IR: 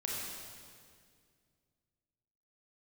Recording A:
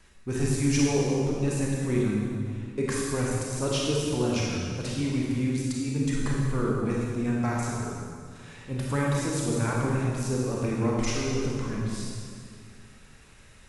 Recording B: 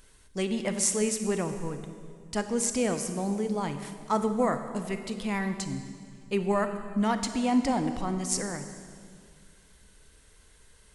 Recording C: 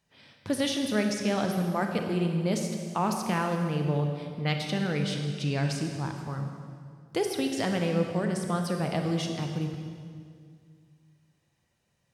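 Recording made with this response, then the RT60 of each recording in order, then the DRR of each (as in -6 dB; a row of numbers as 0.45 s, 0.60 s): A; 2.1 s, 2.1 s, 2.1 s; -4.0 dB, 7.5 dB, 3.0 dB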